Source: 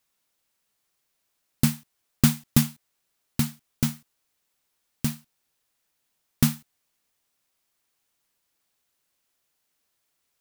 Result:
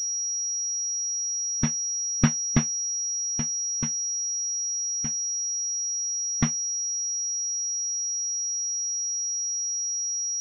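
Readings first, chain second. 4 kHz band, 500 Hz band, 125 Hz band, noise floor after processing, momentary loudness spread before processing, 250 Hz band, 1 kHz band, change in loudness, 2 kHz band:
n/a, +0.5 dB, -3.5 dB, -29 dBFS, 17 LU, -3.5 dB, +1.5 dB, +1.0 dB, +0.5 dB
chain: per-bin expansion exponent 2; pulse-width modulation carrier 5700 Hz

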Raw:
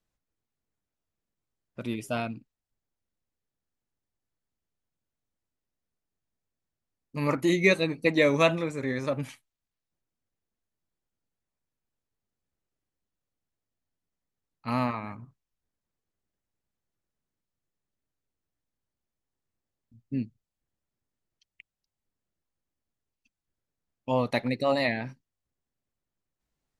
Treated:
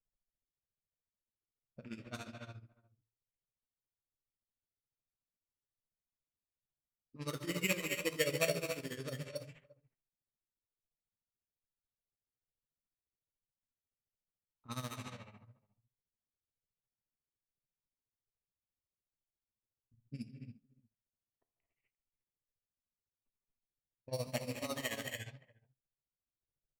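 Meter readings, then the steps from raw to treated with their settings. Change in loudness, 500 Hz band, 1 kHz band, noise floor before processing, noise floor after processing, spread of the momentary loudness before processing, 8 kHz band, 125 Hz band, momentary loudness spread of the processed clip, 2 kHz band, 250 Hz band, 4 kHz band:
-12.0 dB, -13.0 dB, -16.0 dB, under -85 dBFS, under -85 dBFS, 18 LU, +2.0 dB, -10.5 dB, 19 LU, -11.0 dB, -15.0 dB, -6.0 dB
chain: moving spectral ripple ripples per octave 0.52, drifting +1.2 Hz, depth 8 dB; echo 0.346 s -21.5 dB; non-linear reverb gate 0.31 s rising, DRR 3 dB; sample-rate reducer 5000 Hz, jitter 0%; bell 280 Hz -5.5 dB 1.1 oct; tremolo 14 Hz, depth 85%; flange 0.82 Hz, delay 7.8 ms, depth 5.8 ms, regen -78%; low-pass opened by the level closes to 830 Hz, open at -33 dBFS; bell 900 Hz -7 dB 1.1 oct; gain -4 dB

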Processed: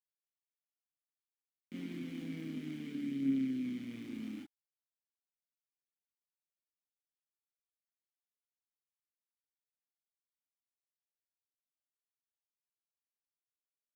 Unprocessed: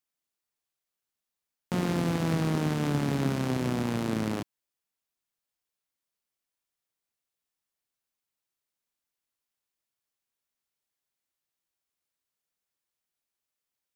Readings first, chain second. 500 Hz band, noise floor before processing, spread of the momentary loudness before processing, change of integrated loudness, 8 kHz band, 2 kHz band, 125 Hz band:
-21.0 dB, under -85 dBFS, 6 LU, -10.5 dB, under -20 dB, -15.5 dB, -20.5 dB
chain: vowel filter i; sample gate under -50.5 dBFS; chorus voices 4, 0.26 Hz, delay 27 ms, depth 5 ms

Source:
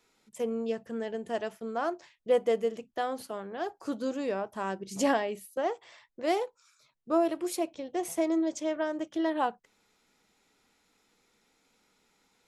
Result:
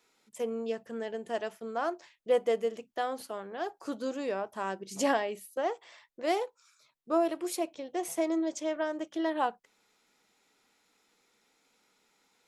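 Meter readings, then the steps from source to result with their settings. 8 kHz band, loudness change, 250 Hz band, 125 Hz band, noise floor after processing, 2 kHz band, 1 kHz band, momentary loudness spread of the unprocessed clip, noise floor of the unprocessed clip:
0.0 dB, -1.5 dB, -2.5 dB, n/a, -73 dBFS, 0.0 dB, -0.5 dB, 8 LU, -72 dBFS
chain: low shelf 160 Hz -12 dB

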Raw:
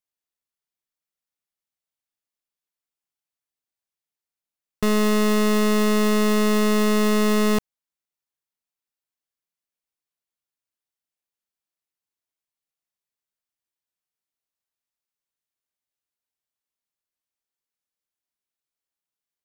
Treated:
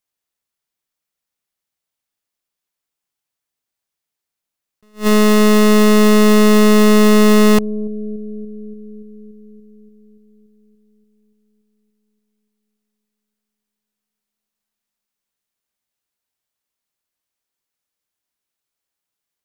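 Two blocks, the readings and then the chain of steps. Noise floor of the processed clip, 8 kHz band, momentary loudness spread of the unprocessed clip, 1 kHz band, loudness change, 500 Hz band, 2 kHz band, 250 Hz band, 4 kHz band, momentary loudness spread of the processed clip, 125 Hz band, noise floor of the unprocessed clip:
-83 dBFS, +7.0 dB, 3 LU, +7.0 dB, +8.5 dB, +9.0 dB, +7.0 dB, +9.0 dB, +7.0 dB, 17 LU, n/a, under -85 dBFS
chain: analogue delay 0.287 s, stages 1024, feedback 70%, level -19.5 dB; attack slew limiter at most 280 dB/s; gain +7.5 dB

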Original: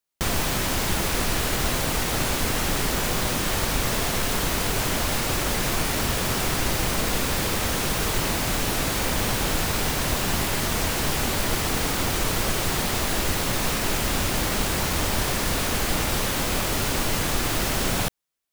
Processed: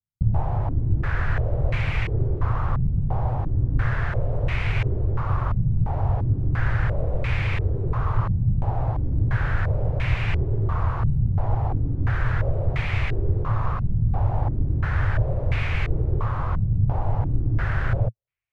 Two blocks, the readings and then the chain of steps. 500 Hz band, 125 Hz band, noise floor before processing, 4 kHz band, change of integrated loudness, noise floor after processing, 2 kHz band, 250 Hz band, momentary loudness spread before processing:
-5.0 dB, +8.5 dB, -26 dBFS, -18.5 dB, -1.0 dB, -28 dBFS, -5.0 dB, -4.0 dB, 0 LU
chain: resonant low shelf 160 Hz +11.5 dB, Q 3; stepped low-pass 2.9 Hz 200–2300 Hz; gain -7.5 dB

